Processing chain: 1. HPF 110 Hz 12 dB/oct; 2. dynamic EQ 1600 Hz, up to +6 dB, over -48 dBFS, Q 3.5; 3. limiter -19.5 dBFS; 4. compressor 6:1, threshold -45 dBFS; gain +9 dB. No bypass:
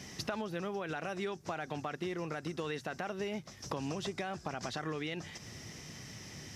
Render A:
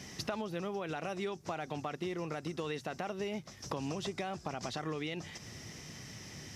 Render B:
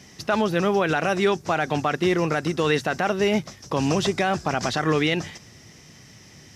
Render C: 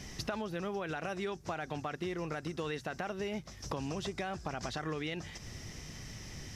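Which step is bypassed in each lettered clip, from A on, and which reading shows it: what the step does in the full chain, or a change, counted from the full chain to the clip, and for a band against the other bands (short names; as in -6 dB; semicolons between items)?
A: 2, 2 kHz band -2.0 dB; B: 4, mean gain reduction 11.5 dB; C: 1, crest factor change -2.5 dB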